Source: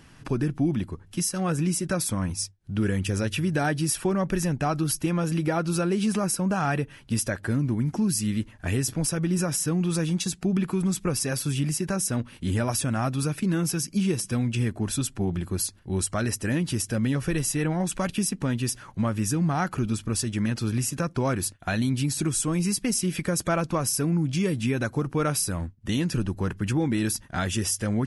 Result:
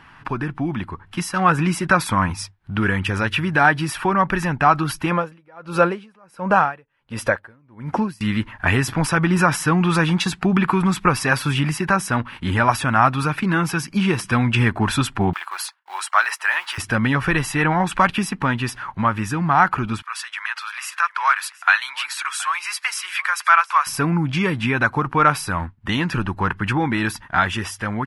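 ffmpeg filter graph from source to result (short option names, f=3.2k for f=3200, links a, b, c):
-filter_complex "[0:a]asettb=1/sr,asplit=3[a][b][c];[a]atrim=end=5.114[d];[b]atrim=start=5.11:end=8.21,asetpts=PTS-STARTPTS,afade=t=in:d=0.004:c=qsin,afade=t=out:st=3.096:d=0.004:c=qsin,equalizer=f=520:w=2.7:g=12,aeval=exprs='val(0)*pow(10,-36*(0.5-0.5*cos(2*PI*1.4*n/s))/20)':c=same[e];[c]atrim=start=8.206[f];[d][e]acrossfade=d=0.004:c1=hsin:c2=qsin[g];[g][f]acrossfade=d=0.004:c1=qsin:c2=hsin,asettb=1/sr,asplit=3[h][i][j];[h]atrim=end=15.334[k];[i]atrim=start=15.33:end=16.78,asetpts=PTS-STARTPTS,afade=t=in:d=0.004:c=qsin,afade=t=out:st=1.446:d=0.004:c=qsin,agate=range=-33dB:threshold=-43dB:ratio=3:release=100:detection=peak,acrusher=bits=7:mode=log:mix=0:aa=0.000001,highpass=f=800:w=0.5412,highpass=f=800:w=1.3066[l];[j]atrim=start=16.776[m];[k][l]acrossfade=d=0.004:c1=hsin:c2=qsin[n];[n][m]acrossfade=d=0.004:c1=qsin:c2=hsin,asettb=1/sr,asplit=3[o][p][q];[o]atrim=end=20.024[r];[p]atrim=start=20.02:end=23.87,asetpts=PTS-STARTPTS,afade=t=in:d=0.004:c=qsin,afade=t=out:st=3.846:d=0.004:c=qsin,highpass=f=1.1k:w=0.5412,highpass=f=1.1k:w=1.3066,aecho=1:1:723:0.0944,atrim=end_sample=169785[s];[q]atrim=start=23.866[t];[r][s]acrossfade=d=0.004:c1=hsin:c2=qsin[u];[u][t]acrossfade=d=0.004:c1=qsin:c2=hsin,firequalizer=gain_entry='entry(540,0);entry(910,15);entry(6300,-8)':delay=0.05:min_phase=1,dynaudnorm=f=340:g=7:m=11.5dB,volume=-1dB"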